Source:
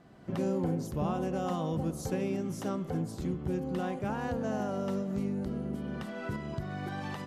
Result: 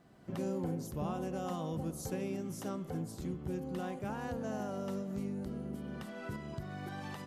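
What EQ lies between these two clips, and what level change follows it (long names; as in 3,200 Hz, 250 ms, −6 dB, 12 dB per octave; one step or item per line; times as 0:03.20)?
high-shelf EQ 7,700 Hz +9 dB
−5.5 dB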